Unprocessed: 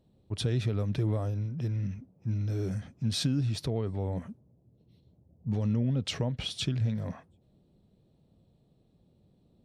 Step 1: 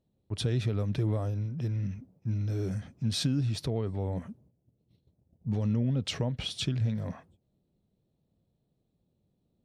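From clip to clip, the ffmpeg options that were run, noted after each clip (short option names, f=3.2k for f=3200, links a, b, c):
-af "agate=range=-10dB:threshold=-59dB:ratio=16:detection=peak"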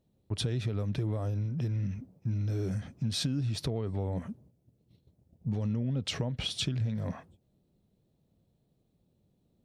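-af "acompressor=threshold=-33dB:ratio=3,volume=3.5dB"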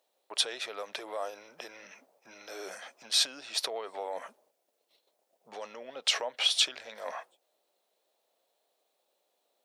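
-af "highpass=f=600:w=0.5412,highpass=f=600:w=1.3066,volume=8.5dB"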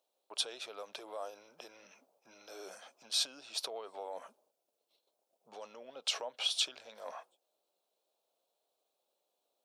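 -af "equalizer=f=1.9k:w=3.5:g=-11,volume=-6dB"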